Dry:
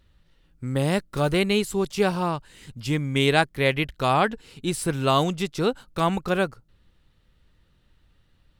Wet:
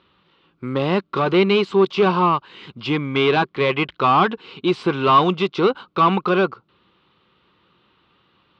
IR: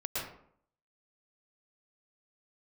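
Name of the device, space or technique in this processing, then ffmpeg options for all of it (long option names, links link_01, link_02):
overdrive pedal into a guitar cabinet: -filter_complex "[0:a]asplit=2[link_01][link_02];[link_02]highpass=frequency=720:poles=1,volume=22dB,asoftclip=type=tanh:threshold=-5.5dB[link_03];[link_01][link_03]amix=inputs=2:normalize=0,lowpass=frequency=6000:poles=1,volume=-6dB,highpass=94,equalizer=frequency=190:width_type=q:width=4:gain=5,equalizer=frequency=370:width_type=q:width=4:gain=7,equalizer=frequency=620:width_type=q:width=4:gain=-5,equalizer=frequency=1100:width_type=q:width=4:gain=8,equalizer=frequency=1800:width_type=q:width=4:gain=-9,lowpass=frequency=3700:width=0.5412,lowpass=frequency=3700:width=1.3066,volume=-3.5dB"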